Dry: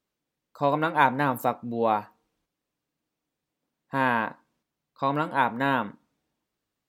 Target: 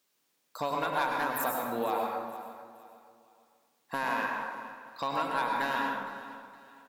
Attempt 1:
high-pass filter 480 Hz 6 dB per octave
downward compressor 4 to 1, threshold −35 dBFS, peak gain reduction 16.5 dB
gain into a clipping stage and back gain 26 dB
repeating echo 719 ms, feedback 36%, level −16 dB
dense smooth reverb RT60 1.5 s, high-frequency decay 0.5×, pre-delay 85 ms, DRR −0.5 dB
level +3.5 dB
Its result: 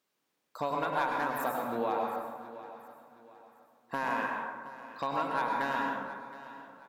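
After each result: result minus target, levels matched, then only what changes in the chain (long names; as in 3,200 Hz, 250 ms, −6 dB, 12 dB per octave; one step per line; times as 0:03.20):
echo 256 ms late; 8,000 Hz band −6.5 dB
change: repeating echo 463 ms, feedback 36%, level −16 dB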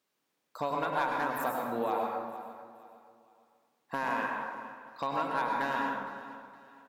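8,000 Hz band −6.5 dB
add after downward compressor: high-shelf EQ 3,000 Hz +9.5 dB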